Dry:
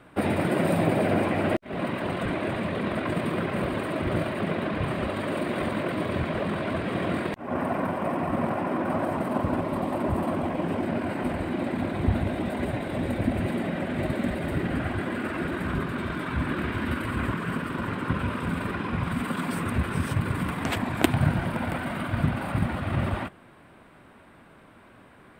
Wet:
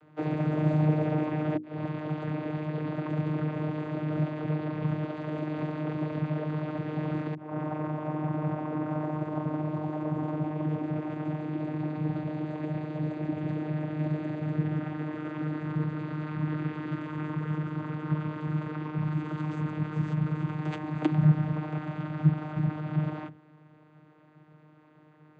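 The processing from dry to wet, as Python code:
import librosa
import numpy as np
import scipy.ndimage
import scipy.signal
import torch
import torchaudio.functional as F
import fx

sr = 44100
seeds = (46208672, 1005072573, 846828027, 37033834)

y = fx.hum_notches(x, sr, base_hz=60, count=6)
y = fx.vocoder(y, sr, bands=16, carrier='saw', carrier_hz=153.0)
y = F.gain(torch.from_numpy(y), -1.0).numpy()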